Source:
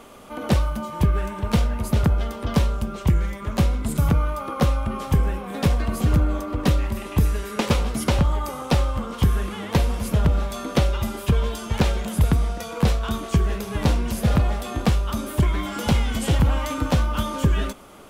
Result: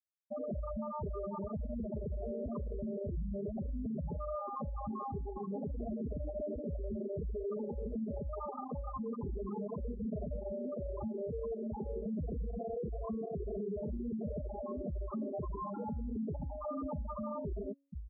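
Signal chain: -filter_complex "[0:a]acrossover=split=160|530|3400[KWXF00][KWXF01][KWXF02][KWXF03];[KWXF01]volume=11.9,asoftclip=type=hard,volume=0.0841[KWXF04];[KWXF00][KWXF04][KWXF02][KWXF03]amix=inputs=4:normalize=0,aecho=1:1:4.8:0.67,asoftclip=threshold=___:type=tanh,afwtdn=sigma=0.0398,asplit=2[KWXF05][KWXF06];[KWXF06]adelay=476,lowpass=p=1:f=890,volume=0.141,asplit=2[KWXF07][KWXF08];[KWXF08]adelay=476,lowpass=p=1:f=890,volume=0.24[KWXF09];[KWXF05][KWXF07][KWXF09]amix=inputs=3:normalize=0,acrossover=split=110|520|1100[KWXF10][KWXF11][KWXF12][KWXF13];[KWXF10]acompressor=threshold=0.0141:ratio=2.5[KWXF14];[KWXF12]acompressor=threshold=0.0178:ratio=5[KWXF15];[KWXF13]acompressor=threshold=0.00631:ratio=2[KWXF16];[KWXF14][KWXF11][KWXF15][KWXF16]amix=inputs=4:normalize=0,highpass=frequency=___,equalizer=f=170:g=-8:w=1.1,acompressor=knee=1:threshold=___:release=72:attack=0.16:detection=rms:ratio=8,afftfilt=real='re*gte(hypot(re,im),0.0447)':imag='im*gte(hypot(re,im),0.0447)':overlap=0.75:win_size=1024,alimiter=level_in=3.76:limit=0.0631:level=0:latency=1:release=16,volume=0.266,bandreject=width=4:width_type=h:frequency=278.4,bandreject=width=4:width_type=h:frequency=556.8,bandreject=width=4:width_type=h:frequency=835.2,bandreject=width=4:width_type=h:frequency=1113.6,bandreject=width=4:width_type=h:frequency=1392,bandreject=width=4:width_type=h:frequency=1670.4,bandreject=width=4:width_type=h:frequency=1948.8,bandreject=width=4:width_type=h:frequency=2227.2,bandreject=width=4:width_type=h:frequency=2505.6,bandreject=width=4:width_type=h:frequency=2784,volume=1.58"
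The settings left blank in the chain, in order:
0.15, 77, 0.02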